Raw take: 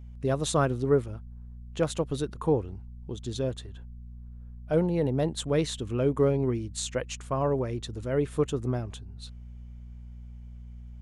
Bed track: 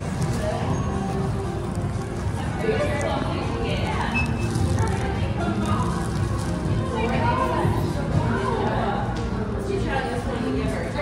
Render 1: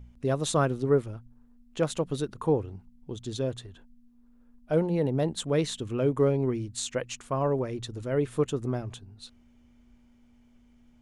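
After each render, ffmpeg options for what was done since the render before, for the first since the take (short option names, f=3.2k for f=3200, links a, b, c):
-af "bandreject=f=60:t=h:w=4,bandreject=f=120:t=h:w=4,bandreject=f=180:t=h:w=4"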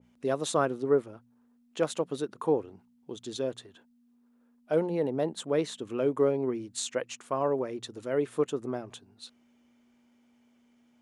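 -af "highpass=260,adynamicequalizer=threshold=0.00501:dfrequency=1900:dqfactor=0.7:tfrequency=1900:tqfactor=0.7:attack=5:release=100:ratio=0.375:range=3.5:mode=cutabove:tftype=highshelf"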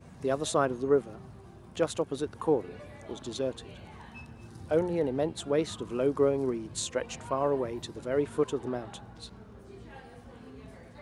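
-filter_complex "[1:a]volume=-23.5dB[a];[0:a][a]amix=inputs=2:normalize=0"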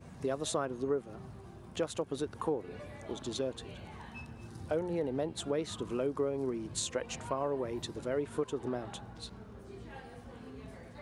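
-af "acompressor=threshold=-31dB:ratio=3"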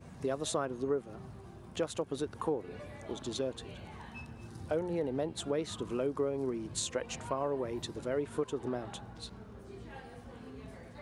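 -af anull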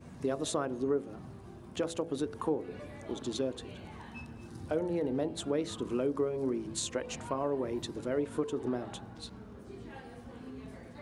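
-af "equalizer=f=280:w=1.6:g=5,bandreject=f=55.46:t=h:w=4,bandreject=f=110.92:t=h:w=4,bandreject=f=166.38:t=h:w=4,bandreject=f=221.84:t=h:w=4,bandreject=f=277.3:t=h:w=4,bandreject=f=332.76:t=h:w=4,bandreject=f=388.22:t=h:w=4,bandreject=f=443.68:t=h:w=4,bandreject=f=499.14:t=h:w=4,bandreject=f=554.6:t=h:w=4,bandreject=f=610.06:t=h:w=4,bandreject=f=665.52:t=h:w=4,bandreject=f=720.98:t=h:w=4,bandreject=f=776.44:t=h:w=4,bandreject=f=831.9:t=h:w=4"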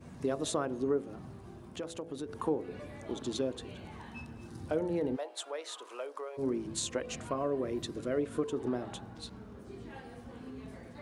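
-filter_complex "[0:a]asettb=1/sr,asplit=3[a][b][c];[a]atrim=end=1.634[d];[b]atrim=start=1.63:end=2.29,asetpts=PTS-STARTPTS,afade=t=in:d=0.004:c=qsin,afade=t=out:st=0.656:d=0.004:c=qsin,acompressor=threshold=-46dB:ratio=1.5:attack=3.2:release=140:knee=1:detection=peak[e];[c]atrim=start=2.286[f];[d][e]acrossfade=d=0.004:c1=hsin:c2=qsin[g];[g][f]acrossfade=d=0.004:c1=qsin:c2=hsin,asplit=3[h][i][j];[h]afade=t=out:st=5.15:d=0.02[k];[i]highpass=f=590:w=0.5412,highpass=f=590:w=1.3066,afade=t=in:st=5.15:d=0.02,afade=t=out:st=6.37:d=0.02[l];[j]afade=t=in:st=6.37:d=0.02[m];[k][l][m]amix=inputs=3:normalize=0,asettb=1/sr,asplit=3[n][o][p];[n]atrim=end=6.994[q];[o]atrim=start=6.99:end=8.44,asetpts=PTS-STARTPTS,afade=t=in:d=0.004:c=qsin,afade=t=out:st=1.446:d=0.004:c=qsin,asuperstop=centerf=880:order=4:qfactor=5[r];[p]atrim=start=8.436[s];[q][r]acrossfade=d=0.004:c1=hsin:c2=qsin[t];[t][s]acrossfade=d=0.004:c1=qsin:c2=hsin"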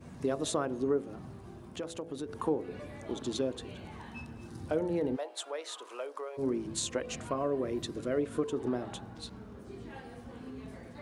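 -af "volume=1dB"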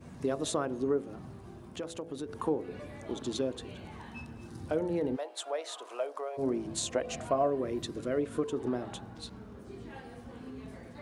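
-filter_complex "[0:a]asettb=1/sr,asplit=3[a][b][c];[a]atrim=end=5.454[d];[b]atrim=start=5.45:end=7.5,asetpts=PTS-STARTPTS,afade=t=in:d=0.004:c=qsin,afade=t=out:st=2.046:d=0.004:c=qsin,equalizer=f=680:t=o:w=0.39:g=11[e];[c]atrim=start=7.496[f];[d][e]acrossfade=d=0.004:c1=hsin:c2=qsin[g];[g][f]acrossfade=d=0.004:c1=qsin:c2=hsin"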